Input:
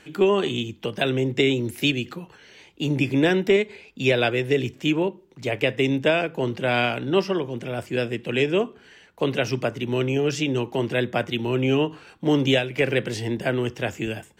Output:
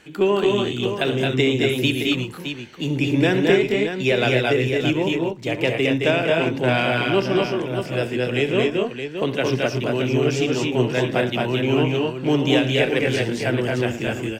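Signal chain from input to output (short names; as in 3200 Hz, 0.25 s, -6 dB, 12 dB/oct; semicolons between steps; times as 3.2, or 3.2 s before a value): added harmonics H 6 -37 dB, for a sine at -8.5 dBFS; tapped delay 67/112/218/242/618 ms -14/-15.5/-3.5/-4/-8 dB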